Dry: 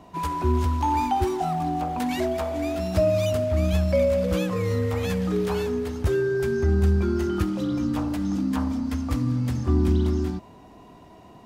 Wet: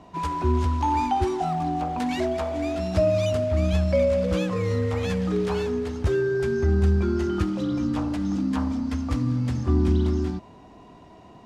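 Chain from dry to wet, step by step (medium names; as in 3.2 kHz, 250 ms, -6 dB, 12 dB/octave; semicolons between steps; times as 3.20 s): low-pass 7.6 kHz 12 dB/octave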